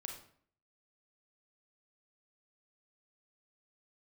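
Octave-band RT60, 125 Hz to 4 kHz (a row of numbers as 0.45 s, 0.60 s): 0.65 s, 0.65 s, 0.60 s, 0.55 s, 0.50 s, 0.40 s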